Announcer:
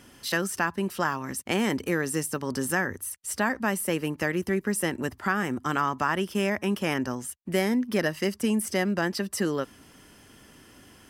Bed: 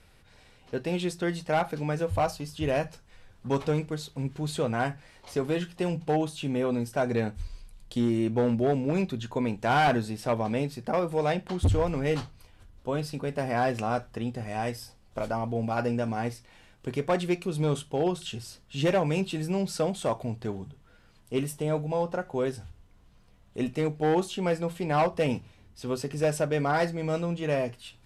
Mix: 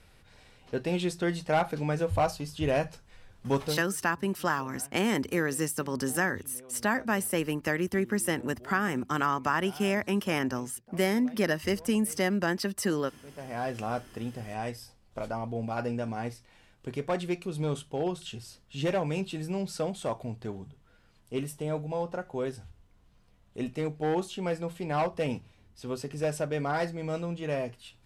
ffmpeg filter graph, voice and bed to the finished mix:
-filter_complex "[0:a]adelay=3450,volume=-1.5dB[a];[1:a]volume=19.5dB,afade=t=out:st=3.54:d=0.33:silence=0.0668344,afade=t=in:st=13.21:d=0.63:silence=0.105925[b];[a][b]amix=inputs=2:normalize=0"

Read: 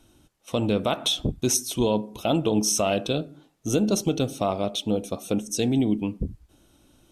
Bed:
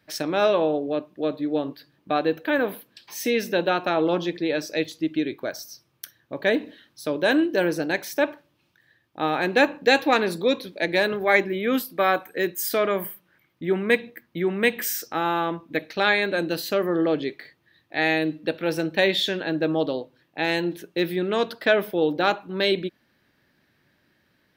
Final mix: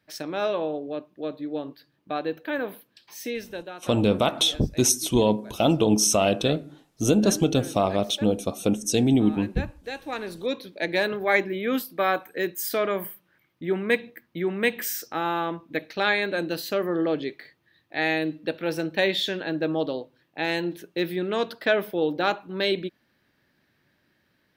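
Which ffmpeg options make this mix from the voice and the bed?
-filter_complex "[0:a]adelay=3350,volume=2.5dB[a];[1:a]volume=8.5dB,afade=t=out:st=3.14:d=0.57:silence=0.281838,afade=t=in:st=9.99:d=0.9:silence=0.188365[b];[a][b]amix=inputs=2:normalize=0"

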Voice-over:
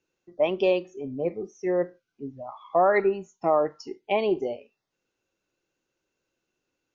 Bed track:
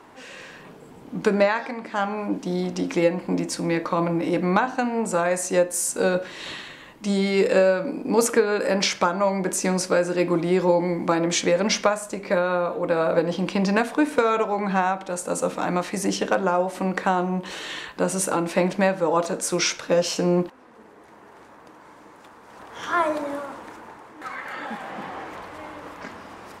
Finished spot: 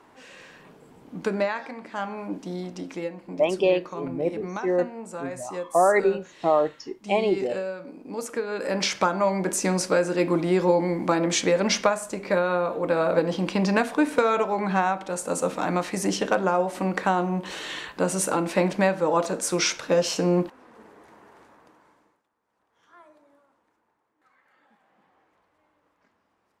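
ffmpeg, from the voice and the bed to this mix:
-filter_complex "[0:a]adelay=3000,volume=1.5dB[a];[1:a]volume=6dB,afade=t=out:st=2.4:d=0.73:silence=0.446684,afade=t=in:st=8.27:d=0.8:silence=0.251189,afade=t=out:st=20.85:d=1.38:silence=0.0334965[b];[a][b]amix=inputs=2:normalize=0"

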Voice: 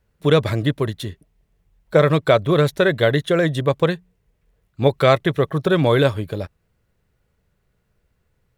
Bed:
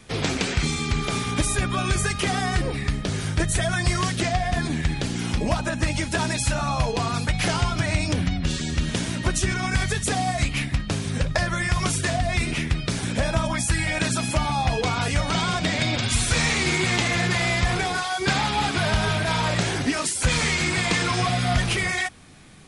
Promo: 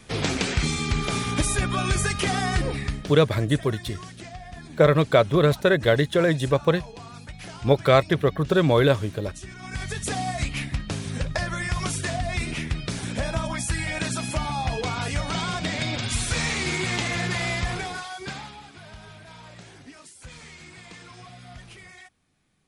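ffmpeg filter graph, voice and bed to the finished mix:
-filter_complex "[0:a]adelay=2850,volume=-2.5dB[a];[1:a]volume=12dB,afade=t=out:st=2.71:d=0.51:silence=0.158489,afade=t=in:st=9.56:d=0.54:silence=0.237137,afade=t=out:st=17.51:d=1.11:silence=0.125893[b];[a][b]amix=inputs=2:normalize=0"

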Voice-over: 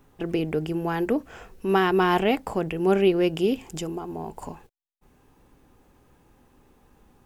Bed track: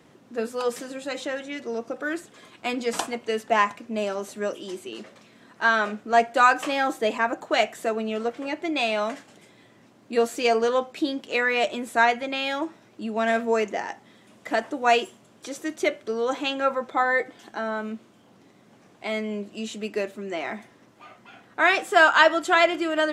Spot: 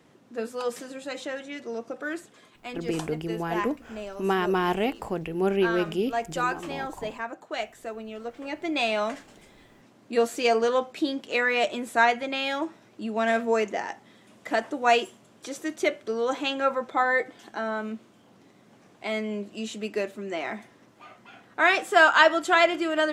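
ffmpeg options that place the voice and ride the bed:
-filter_complex "[0:a]adelay=2550,volume=-4dB[a];[1:a]volume=5.5dB,afade=t=out:st=2.26:d=0.37:silence=0.473151,afade=t=in:st=8.22:d=0.54:silence=0.354813[b];[a][b]amix=inputs=2:normalize=0"

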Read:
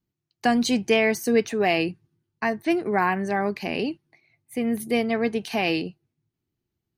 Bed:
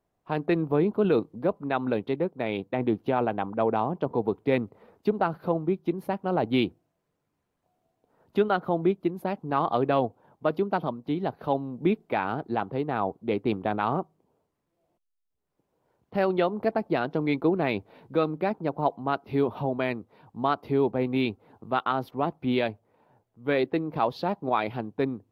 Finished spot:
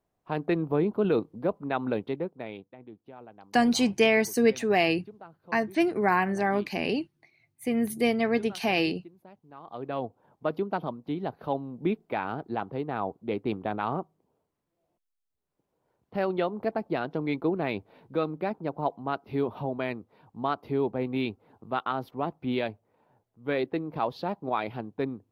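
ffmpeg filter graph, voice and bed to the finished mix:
-filter_complex "[0:a]adelay=3100,volume=-1.5dB[a];[1:a]volume=16.5dB,afade=t=out:st=1.98:d=0.78:silence=0.1,afade=t=in:st=9.63:d=0.66:silence=0.11885[b];[a][b]amix=inputs=2:normalize=0"

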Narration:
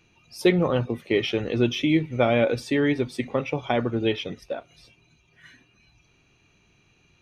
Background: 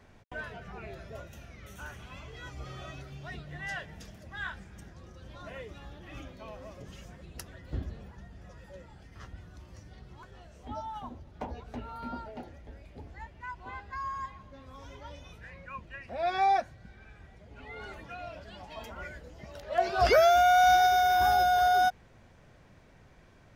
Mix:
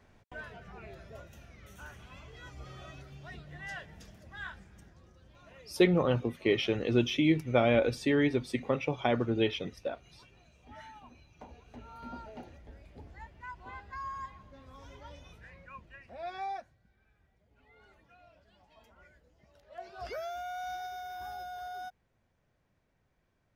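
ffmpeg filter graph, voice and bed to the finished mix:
-filter_complex "[0:a]adelay=5350,volume=-4.5dB[a];[1:a]volume=4dB,afade=t=out:st=4.42:d=0.94:silence=0.421697,afade=t=in:st=11.62:d=0.68:silence=0.375837,afade=t=out:st=15.17:d=1.65:silence=0.188365[b];[a][b]amix=inputs=2:normalize=0"

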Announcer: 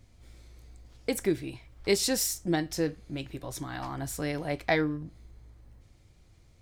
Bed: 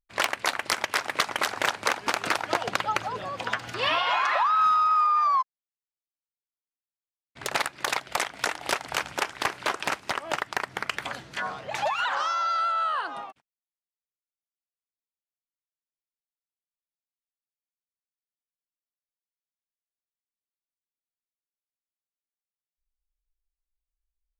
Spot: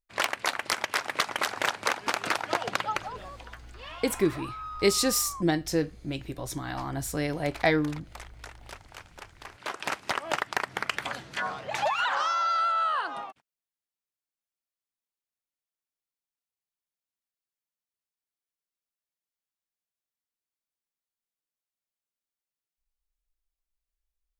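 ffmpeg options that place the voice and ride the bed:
-filter_complex "[0:a]adelay=2950,volume=2.5dB[a];[1:a]volume=16dB,afade=t=out:st=2.8:d=0.7:silence=0.158489,afade=t=in:st=9.46:d=0.67:silence=0.125893[b];[a][b]amix=inputs=2:normalize=0"

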